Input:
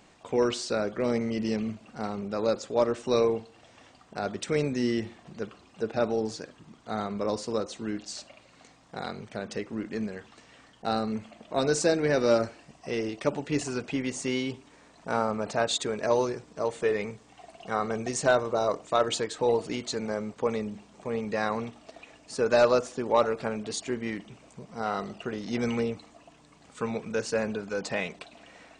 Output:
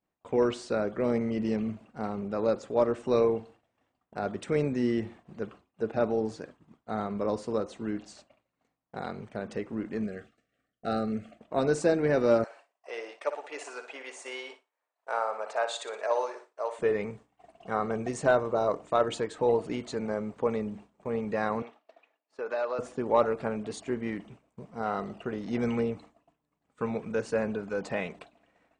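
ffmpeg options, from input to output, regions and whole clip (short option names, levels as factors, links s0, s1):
-filter_complex "[0:a]asettb=1/sr,asplit=3[s0][s1][s2];[s0]atrim=end=10.034[s3];[s1]atrim=start=10.03:end=11.39,asetpts=PTS-STARTPTS,afade=t=in:d=0.004:c=qsin,afade=t=out:st=1.356:d=0.004:c=qsin,asuperstop=centerf=940:order=12:qfactor=2.5,highshelf=f=8200:g=4.5[s4];[s2]atrim=start=11.386[s5];[s3][s4]acrossfade=d=0.004:c1=hsin:c2=qsin[s6];[s6][s5]acrossfade=d=0.004:c1=qsin:c2=hsin,asettb=1/sr,asplit=3[s7][s8][s9];[s7]atrim=end=12.444[s10];[s8]atrim=start=12.44:end=16.79,asetpts=PTS-STARTPTS,afade=t=in:d=0.004:c=qsin,afade=t=out:st=4.346:d=0.004:c=qsin,highpass=f=550:w=0.5412,highpass=f=550:w=1.3066,aecho=1:1:60|120|180|240|300:0.316|0.136|0.0585|0.0251|0.0108,atrim=end_sample=191835[s11];[s9]atrim=start=16.786[s12];[s10][s11]acrossfade=d=0.004:c1=hsin:c2=qsin[s13];[s13][s12]acrossfade=d=0.004:c1=qsin:c2=hsin,asettb=1/sr,asplit=3[s14][s15][s16];[s14]atrim=end=21.624[s17];[s15]atrim=start=21.62:end=22.79,asetpts=PTS-STARTPTS,afade=t=in:d=0.004:c=qsin,afade=t=out:st=1.166:d=0.004:c=qsin,acompressor=threshold=0.0355:ratio=2:attack=3.2:release=140:knee=1:detection=peak,highpass=530,lowpass=4800[s18];[s16]atrim=start=22.786[s19];[s17][s18]acrossfade=d=0.004:c1=hsin:c2=qsin[s20];[s20][s19]acrossfade=d=0.004:c1=qsin:c2=hsin,equalizer=f=5500:t=o:w=1.9:g=-11.5,agate=range=0.0224:threshold=0.00708:ratio=3:detection=peak"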